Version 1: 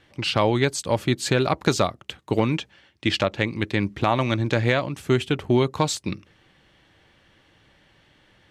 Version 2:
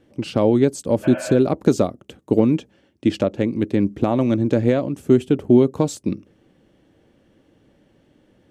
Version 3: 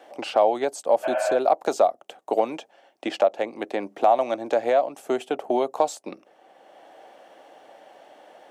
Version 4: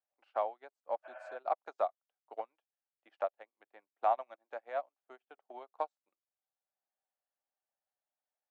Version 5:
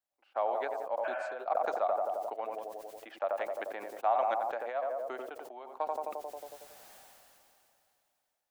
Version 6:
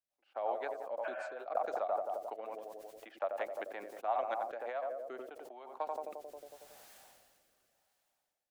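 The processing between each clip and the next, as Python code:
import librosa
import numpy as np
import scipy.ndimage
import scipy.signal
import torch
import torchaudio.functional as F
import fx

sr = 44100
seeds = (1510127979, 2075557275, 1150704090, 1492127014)

y1 = fx.spec_repair(x, sr, seeds[0], start_s=1.06, length_s=0.27, low_hz=530.0, high_hz=3300.0, source='after')
y1 = fx.graphic_eq_10(y1, sr, hz=(250, 500, 1000, 2000, 4000), db=(10, 6, -5, -7, -8))
y1 = y1 * 10.0 ** (-1.5 / 20.0)
y2 = fx.highpass_res(y1, sr, hz=720.0, q=4.9)
y2 = fx.band_squash(y2, sr, depth_pct=40)
y2 = y2 * 10.0 ** (-2.0 / 20.0)
y3 = fx.bandpass_q(y2, sr, hz=1400.0, q=1.3)
y3 = fx.upward_expand(y3, sr, threshold_db=-48.0, expansion=2.5)
y3 = y3 * 10.0 ** (-3.5 / 20.0)
y4 = fx.echo_tape(y3, sr, ms=90, feedback_pct=68, wet_db=-16.0, lp_hz=1000.0, drive_db=15.0, wow_cents=25)
y4 = fx.sustainer(y4, sr, db_per_s=21.0)
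y5 = fx.rotary_switch(y4, sr, hz=5.5, then_hz=0.85, switch_at_s=3.99)
y5 = y5 * 10.0 ** (-1.5 / 20.0)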